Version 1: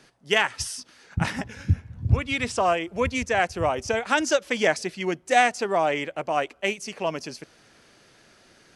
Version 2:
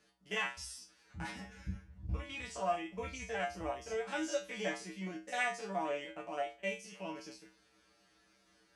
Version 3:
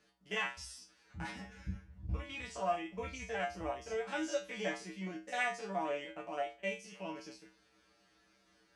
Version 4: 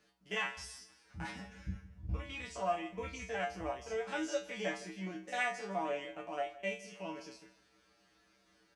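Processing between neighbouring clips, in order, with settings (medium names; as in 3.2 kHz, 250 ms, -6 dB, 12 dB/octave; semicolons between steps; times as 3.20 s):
spectrogram pixelated in time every 50 ms; feedback comb 64 Hz, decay 0.28 s, harmonics odd, mix 100%; trim -2 dB
treble shelf 10 kHz -9 dB
feedback delay 161 ms, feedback 39%, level -18.5 dB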